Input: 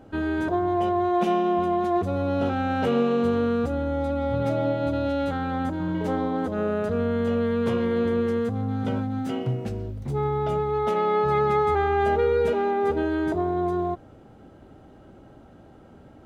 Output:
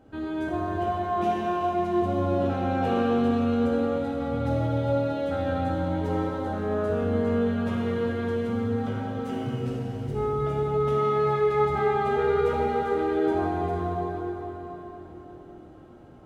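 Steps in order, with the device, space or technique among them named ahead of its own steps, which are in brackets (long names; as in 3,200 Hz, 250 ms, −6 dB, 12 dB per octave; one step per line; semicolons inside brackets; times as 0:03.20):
cathedral (convolution reverb RT60 4.4 s, pre-delay 15 ms, DRR −4.5 dB)
level −7.5 dB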